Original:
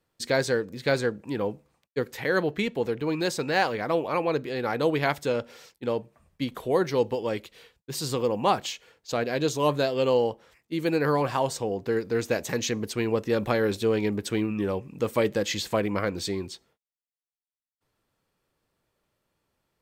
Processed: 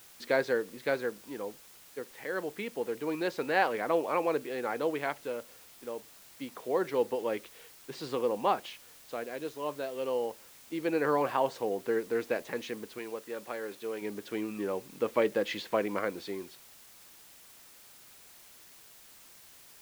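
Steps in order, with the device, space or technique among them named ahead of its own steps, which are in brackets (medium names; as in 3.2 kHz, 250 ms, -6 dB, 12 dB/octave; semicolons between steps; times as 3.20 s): shortwave radio (band-pass 270–2800 Hz; tremolo 0.26 Hz, depth 65%; white noise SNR 21 dB); 12.98–14.02 s: bass shelf 290 Hz -8 dB; trim -2 dB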